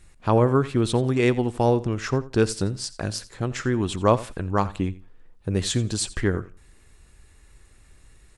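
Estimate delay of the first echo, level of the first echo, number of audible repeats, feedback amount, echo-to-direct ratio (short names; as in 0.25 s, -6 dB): 86 ms, -18.0 dB, 2, 21%, -18.0 dB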